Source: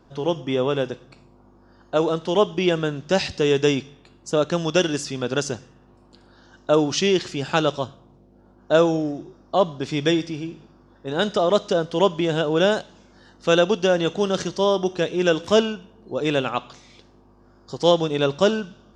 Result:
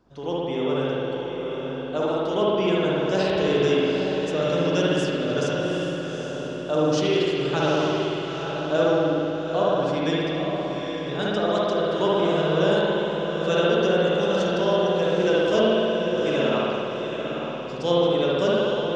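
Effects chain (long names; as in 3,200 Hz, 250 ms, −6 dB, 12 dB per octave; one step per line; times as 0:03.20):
feedback delay with all-pass diffusion 823 ms, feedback 42%, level −5.5 dB
spring reverb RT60 2.4 s, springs 58 ms, chirp 20 ms, DRR −6 dB
level −8.5 dB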